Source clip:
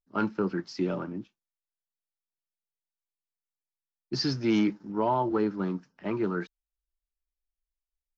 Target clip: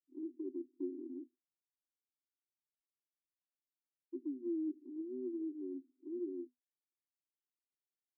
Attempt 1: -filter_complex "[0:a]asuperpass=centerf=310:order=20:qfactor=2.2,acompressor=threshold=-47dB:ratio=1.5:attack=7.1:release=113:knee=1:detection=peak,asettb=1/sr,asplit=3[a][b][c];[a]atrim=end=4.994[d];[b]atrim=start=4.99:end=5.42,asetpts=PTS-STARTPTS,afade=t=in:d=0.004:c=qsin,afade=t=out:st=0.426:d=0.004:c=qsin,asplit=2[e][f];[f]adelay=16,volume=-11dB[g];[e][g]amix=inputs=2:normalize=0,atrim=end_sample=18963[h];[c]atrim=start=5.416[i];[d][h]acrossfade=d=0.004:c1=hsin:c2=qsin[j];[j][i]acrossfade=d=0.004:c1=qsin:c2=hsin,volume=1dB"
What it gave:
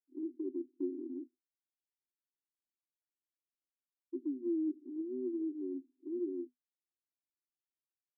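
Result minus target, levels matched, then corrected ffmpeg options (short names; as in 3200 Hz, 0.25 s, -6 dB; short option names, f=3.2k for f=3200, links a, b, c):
compressor: peak gain reduction -3.5 dB
-filter_complex "[0:a]asuperpass=centerf=310:order=20:qfactor=2.2,acompressor=threshold=-58dB:ratio=1.5:attack=7.1:release=113:knee=1:detection=peak,asettb=1/sr,asplit=3[a][b][c];[a]atrim=end=4.994[d];[b]atrim=start=4.99:end=5.42,asetpts=PTS-STARTPTS,afade=t=in:d=0.004:c=qsin,afade=t=out:st=0.426:d=0.004:c=qsin,asplit=2[e][f];[f]adelay=16,volume=-11dB[g];[e][g]amix=inputs=2:normalize=0,atrim=end_sample=18963[h];[c]atrim=start=5.416[i];[d][h]acrossfade=d=0.004:c1=hsin:c2=qsin[j];[j][i]acrossfade=d=0.004:c1=qsin:c2=hsin,volume=1dB"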